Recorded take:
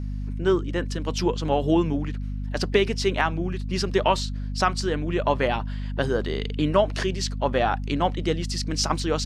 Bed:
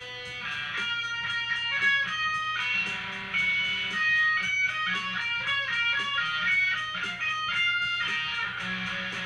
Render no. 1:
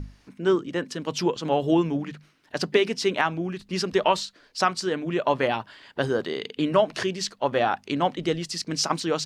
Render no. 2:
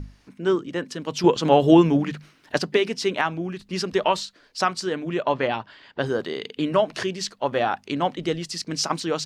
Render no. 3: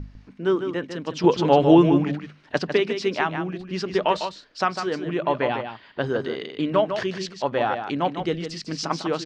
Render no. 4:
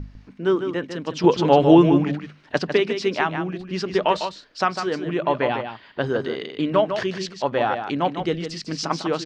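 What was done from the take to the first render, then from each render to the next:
mains-hum notches 50/100/150/200/250 Hz
0:01.24–0:02.59: clip gain +7 dB; 0:05.23–0:06.06: low-pass filter 5,500 Hz
high-frequency loss of the air 120 metres; single-tap delay 151 ms −8 dB
level +1.5 dB

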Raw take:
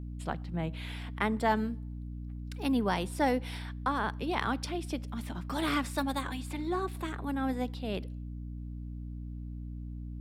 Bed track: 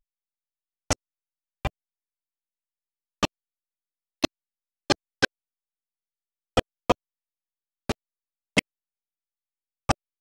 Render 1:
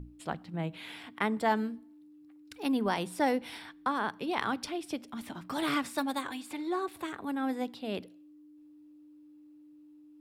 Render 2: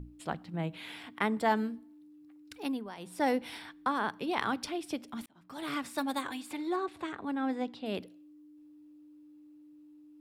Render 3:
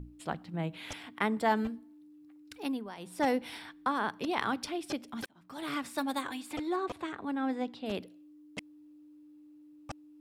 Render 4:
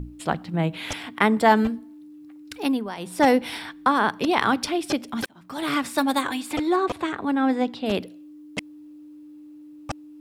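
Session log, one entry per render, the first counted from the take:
mains-hum notches 60/120/180/240 Hz
0:02.54–0:03.30: duck −14.5 dB, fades 0.33 s; 0:05.26–0:06.14: fade in; 0:06.76–0:07.86: high-frequency loss of the air 71 metres
mix in bed track −20.5 dB
level +11 dB; brickwall limiter −3 dBFS, peak gain reduction 2 dB

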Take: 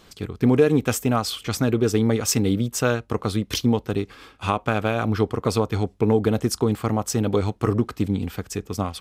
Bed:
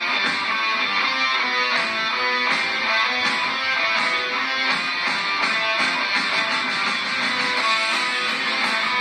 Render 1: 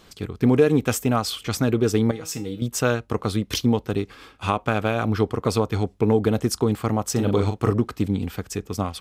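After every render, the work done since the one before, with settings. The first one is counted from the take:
0:02.11–0:02.62: tuned comb filter 160 Hz, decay 0.26 s, mix 80%
0:07.12–0:07.72: double-tracking delay 40 ms −6 dB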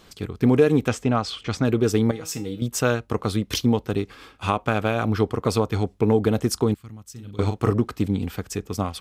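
0:00.88–0:01.65: high-frequency loss of the air 95 metres
0:06.74–0:07.39: guitar amp tone stack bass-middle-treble 6-0-2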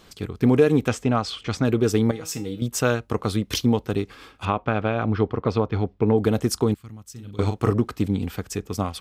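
0:04.45–0:06.18: high-frequency loss of the air 230 metres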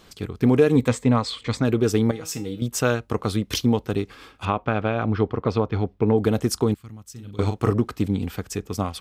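0:00.75–0:01.60: EQ curve with evenly spaced ripples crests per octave 1, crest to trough 8 dB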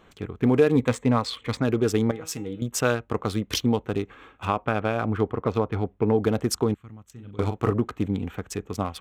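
adaptive Wiener filter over 9 samples
low-shelf EQ 350 Hz −4 dB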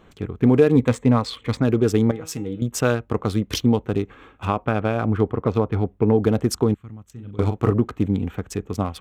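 low-shelf EQ 480 Hz +6 dB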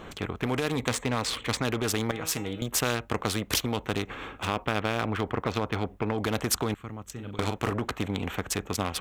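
brickwall limiter −10.5 dBFS, peak gain reduction 5.5 dB
every bin compressed towards the loudest bin 2 to 1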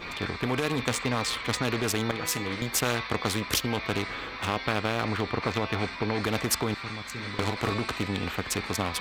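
mix in bed −16.5 dB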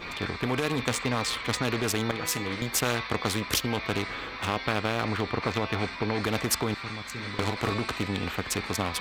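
no processing that can be heard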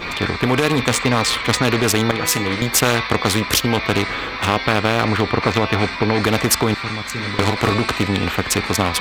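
level +11 dB
brickwall limiter −2 dBFS, peak gain reduction 2.5 dB

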